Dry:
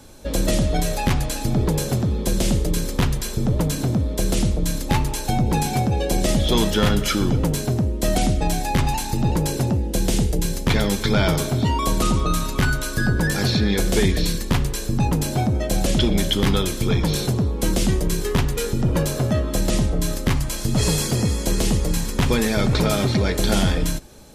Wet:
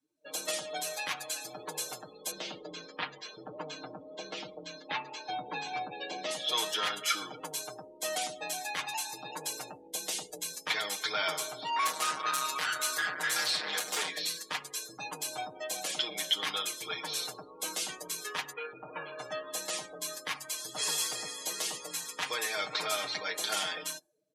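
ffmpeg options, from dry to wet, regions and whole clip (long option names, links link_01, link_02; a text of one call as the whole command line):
ffmpeg -i in.wav -filter_complex "[0:a]asettb=1/sr,asplit=3[link_01][link_02][link_03];[link_01]atrim=end=2.314[link_04];[link_02]atrim=start=2.31:end=6.31,asetpts=PTS-STARTPTS,afade=type=in:duration=0.004:curve=qsin,afade=type=out:start_time=3.996:duration=0.004:curve=qsin,lowpass=4100,equalizer=frequency=250:width=0.82:gain=4.5[link_05];[link_03]atrim=start=6.306[link_06];[link_04][link_05]acrossfade=duration=0.004:curve1=hsin:curve2=qsin[link_07];[link_07][link_06]acrossfade=duration=0.004:curve1=qsin:curve2=hsin,asettb=1/sr,asplit=3[link_08][link_09][link_10];[link_08]atrim=end=11.764[link_11];[link_09]atrim=start=11.76:end=14.09,asetpts=PTS-STARTPTS,afade=type=in:duration=0.004:curve=qsin,afade=type=out:start_time=2.326:duration=0.004:curve=qsin,volume=23dB,asoftclip=hard,volume=-23dB,acontrast=44[link_12];[link_10]atrim=start=14.086[link_13];[link_11][link_12]acrossfade=duration=0.004:curve1=hsin:curve2=qsin[link_14];[link_14][link_13]acrossfade=duration=0.004:curve1=qsin:curve2=hsin,asettb=1/sr,asplit=3[link_15][link_16][link_17];[link_15]atrim=end=18.524[link_18];[link_16]atrim=start=18.52:end=19.19,asetpts=PTS-STARTPTS,afade=type=in:duration=0.004:curve=qsin,afade=type=out:start_time=0.666:duration=0.004:curve=qsin,asoftclip=type=hard:threshold=-16.5dB,lowpass=frequency=3000:width=0.5412,lowpass=frequency=3000:width=1.3066[link_19];[link_17]atrim=start=19.186[link_20];[link_18][link_19]acrossfade=duration=0.004:curve1=hsin:curve2=qsin[link_21];[link_21][link_20]acrossfade=duration=0.004:curve1=qsin:curve2=hsin,aecho=1:1:6.5:0.74,afftdn=noise_reduction=35:noise_floor=-35,highpass=990,volume=-7dB" out.wav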